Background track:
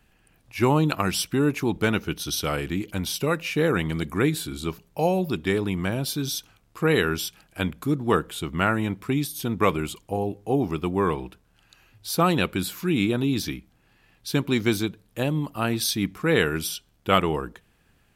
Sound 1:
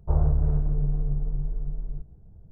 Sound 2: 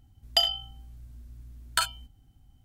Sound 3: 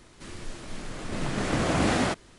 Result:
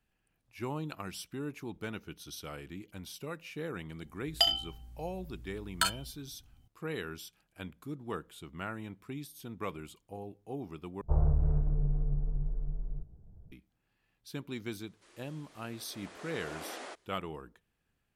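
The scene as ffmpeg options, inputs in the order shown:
-filter_complex "[0:a]volume=-17dB[a];[3:a]highpass=f=360:w=0.5412,highpass=f=360:w=1.3066[b];[a]asplit=2[c][d];[c]atrim=end=11.014[e];[1:a]atrim=end=2.51,asetpts=PTS-STARTPTS,volume=-5dB[f];[d]atrim=start=13.516[g];[2:a]atrim=end=2.64,asetpts=PTS-STARTPTS,volume=-3dB,afade=t=in:d=0.004:c=hsin,afade=t=out:st=2.636:d=0.004:c=hsin,adelay=4040[h];[b]atrim=end=2.38,asetpts=PTS-STARTPTS,volume=-16.5dB,afade=t=in:d=0.004:c=hsin,afade=t=out:st=2.376:d=0.004:c=hsin,adelay=14810[i];[e][f]acrossfade=d=0.004:c1=hsin:c2=hsin[j];[j][g]acrossfade=d=0.004:c1=hsin:c2=hsin[k];[k][h][i]amix=inputs=3:normalize=0"

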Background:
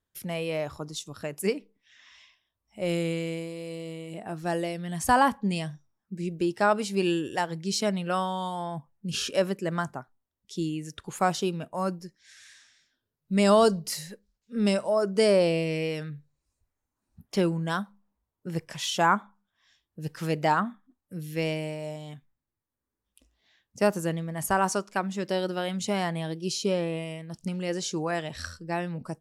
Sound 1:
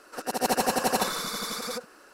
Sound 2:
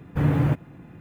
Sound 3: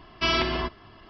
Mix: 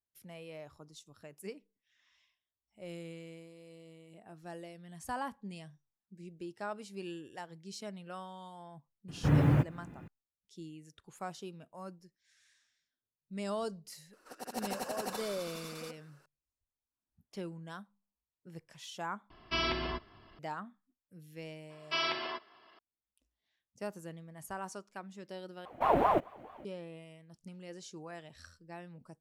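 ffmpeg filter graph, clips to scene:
-filter_complex "[2:a]asplit=2[a][b];[3:a]asplit=2[c][d];[0:a]volume=-17dB[e];[d]highpass=480[f];[b]aeval=exprs='val(0)*sin(2*PI*680*n/s+680*0.4/4.6*sin(2*PI*4.6*n/s))':c=same[g];[e]asplit=3[h][i][j];[h]atrim=end=19.304[k];[c]atrim=end=1.09,asetpts=PTS-STARTPTS,volume=-8.5dB[l];[i]atrim=start=20.386:end=25.654[m];[g]atrim=end=1,asetpts=PTS-STARTPTS,volume=-3.5dB[n];[j]atrim=start=26.646[o];[a]atrim=end=1,asetpts=PTS-STARTPTS,volume=-4.5dB,afade=t=in:d=0.004:c=hsin,afade=t=out:st=0.996:d=0.004:c=hsin,adelay=9080[p];[1:a]atrim=end=2.13,asetpts=PTS-STARTPTS,volume=-14dB,afade=t=in:d=0.004:c=hsin,afade=t=out:st=2.126:d=0.004:c=hsin,adelay=14130[q];[f]atrim=end=1.09,asetpts=PTS-STARTPTS,volume=-8dB,afade=t=in:d=0.004:c=hsin,afade=t=out:st=1.086:d=0.004:c=hsin,adelay=21700[r];[k][l]acrossfade=d=0.004:c1=hsin:c2=hsin[s];[s][m]acrossfade=d=0.004:c1=hsin:c2=hsin[t];[t][n]acrossfade=d=0.004:c1=hsin:c2=hsin[u];[u][o]acrossfade=d=0.004:c1=hsin:c2=hsin[v];[v][p][q][r]amix=inputs=4:normalize=0"

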